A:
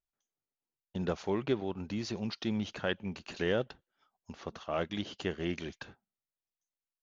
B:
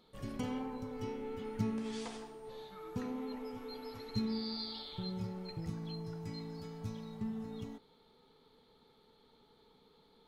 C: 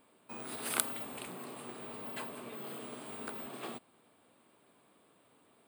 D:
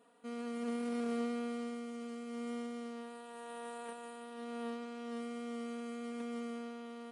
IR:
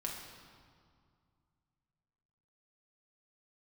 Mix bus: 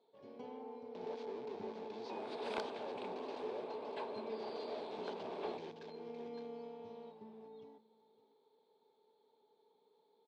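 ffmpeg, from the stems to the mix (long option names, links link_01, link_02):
-filter_complex "[0:a]aeval=exprs='(tanh(141*val(0)+0.6)-tanh(0.6))/141':channel_layout=same,acrusher=bits=7:mix=0:aa=0.000001,volume=-1dB,asplit=2[link_01][link_02];[link_02]volume=-7.5dB[link_03];[1:a]volume=-11.5dB,asplit=2[link_04][link_05];[link_05]volume=-18.5dB[link_06];[2:a]adelay=1800,volume=-2dB[link_07];[3:a]aecho=1:1:4.6:0.5,volume=-9dB,afade=type=in:start_time=5.87:duration=0.24:silence=0.316228[link_08];[link_03][link_06]amix=inputs=2:normalize=0,aecho=0:1:563:1[link_09];[link_01][link_04][link_07][link_08][link_09]amix=inputs=5:normalize=0,aeval=exprs='(mod(6.68*val(0)+1,2)-1)/6.68':channel_layout=same,highpass=300,equalizer=frequency=420:width_type=q:width=4:gain=9,equalizer=frequency=600:width_type=q:width=4:gain=5,equalizer=frequency=880:width_type=q:width=4:gain=8,equalizer=frequency=1300:width_type=q:width=4:gain=-9,equalizer=frequency=1900:width_type=q:width=4:gain=-7,equalizer=frequency=2900:width_type=q:width=4:gain=-6,lowpass=frequency=4200:width=0.5412,lowpass=frequency=4200:width=1.3066,asoftclip=type=tanh:threshold=-28dB"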